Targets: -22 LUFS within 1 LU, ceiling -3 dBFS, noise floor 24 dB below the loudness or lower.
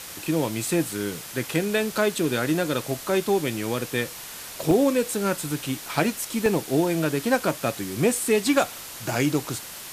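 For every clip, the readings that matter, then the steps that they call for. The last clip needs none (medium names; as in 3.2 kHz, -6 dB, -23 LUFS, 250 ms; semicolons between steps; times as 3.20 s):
dropouts 2; longest dropout 1.2 ms; noise floor -39 dBFS; noise floor target -49 dBFS; loudness -25.0 LUFS; peak level -7.0 dBFS; loudness target -22.0 LUFS
-> interpolate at 4.71/6.46 s, 1.2 ms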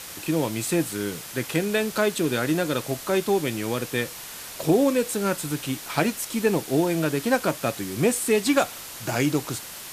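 dropouts 0; noise floor -39 dBFS; noise floor target -49 dBFS
-> noise reduction 10 dB, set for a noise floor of -39 dBFS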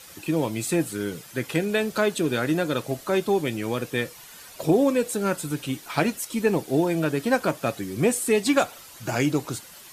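noise floor -46 dBFS; noise floor target -49 dBFS
-> noise reduction 6 dB, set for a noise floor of -46 dBFS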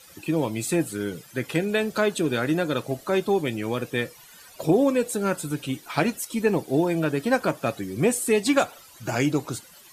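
noise floor -50 dBFS; loudness -25.0 LUFS; peak level -7.0 dBFS; loudness target -22.0 LUFS
-> trim +3 dB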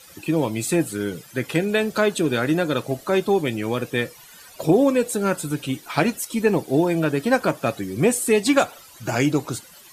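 loudness -22.0 LUFS; peak level -4.0 dBFS; noise floor -47 dBFS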